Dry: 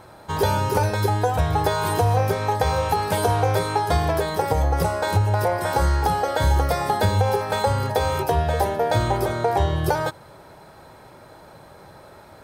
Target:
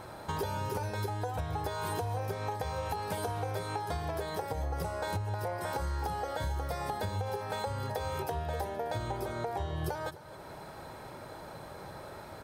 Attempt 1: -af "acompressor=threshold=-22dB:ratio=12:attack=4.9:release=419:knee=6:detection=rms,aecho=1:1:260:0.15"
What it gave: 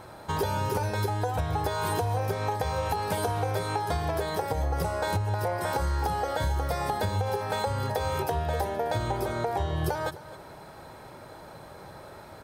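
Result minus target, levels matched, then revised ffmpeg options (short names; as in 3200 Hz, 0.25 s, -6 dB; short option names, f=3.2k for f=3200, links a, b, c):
compressor: peak gain reduction -6.5 dB
-af "acompressor=threshold=-29dB:ratio=12:attack=4.9:release=419:knee=6:detection=rms,aecho=1:1:260:0.15"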